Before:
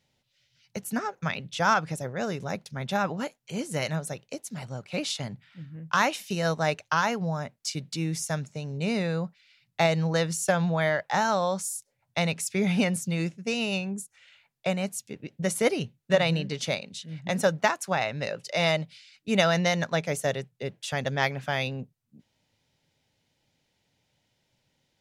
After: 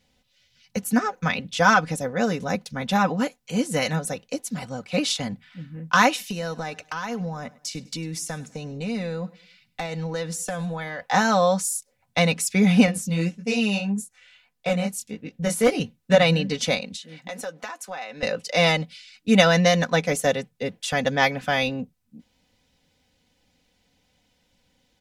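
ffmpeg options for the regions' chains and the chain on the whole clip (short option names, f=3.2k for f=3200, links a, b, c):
-filter_complex "[0:a]asettb=1/sr,asplit=3[a][b][c];[a]atrim=end=6.254[d];[b]atrim=start=6.25:end=11.01,asetpts=PTS-STARTPTS,afade=t=in:d=0.004:c=qsin,afade=t=out:st=4.756:d=0.004:c=qsin,acompressor=threshold=-34dB:ratio=4:attack=3.2:release=140:knee=1:detection=peak,volume=25dB,asoftclip=hard,volume=-25dB,aecho=1:1:101|202|303:0.0891|0.033|0.0122,atrim=end_sample=209916[e];[c]atrim=start=11.006[f];[d][e]acrossfade=d=0.004:c1=hsin:c2=qsin[g];[g][f]acrossfade=d=0.004:c1=qsin:c2=hsin,asettb=1/sr,asplit=3[h][i][j];[h]atrim=end=12.864[k];[i]atrim=start=12.86:end=15.8,asetpts=PTS-STARTPTS,afade=t=in:d=0.004:c=qsin,afade=t=out:st=2.936:d=0.004:c=qsin,flanger=delay=18:depth=6.8:speed=1.7,asoftclip=type=hard:threshold=-21dB[l];[j]atrim=start=15.796[m];[k][l]acrossfade=d=0.004:c1=hsin:c2=qsin[n];[n][m]acrossfade=d=0.004:c1=qsin:c2=hsin,asettb=1/sr,asplit=3[o][p][q];[o]atrim=end=16.964[r];[p]atrim=start=16.96:end=18.23,asetpts=PTS-STARTPTS,afade=t=in:d=0.004:c=qsin,afade=t=out:st=1.266:d=0.004:c=qsin,highpass=340,asplit=2[s][t];[t]adelay=13,volume=-14dB[u];[s][u]amix=inputs=2:normalize=0,atrim=end_sample=56007,acompressor=threshold=-42dB:ratio=2.5:attack=3.2:release=140:knee=1:detection=peak[v];[q]atrim=start=18.226[w];[r][v]acrossfade=d=0.004:c1=hsin:c2=qsin[x];[x][w]acrossfade=d=0.004:c1=qsin:c2=hsin,lowshelf=f=92:g=8.5,aecho=1:1:4:0.67,volume=4.5dB"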